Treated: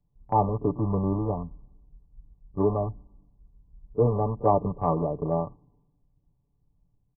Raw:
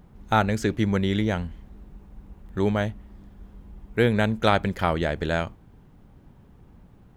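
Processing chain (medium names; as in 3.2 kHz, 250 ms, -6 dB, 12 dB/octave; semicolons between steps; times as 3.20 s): rattle on loud lows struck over -25 dBFS, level -9 dBFS; brick-wall FIR low-pass 1.2 kHz; comb 6.9 ms, depth 58%; compression 1.5:1, threshold -28 dBFS, peak gain reduction 5 dB; on a send: reverse echo 31 ms -12.5 dB; on the sum: three bands expanded up and down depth 100%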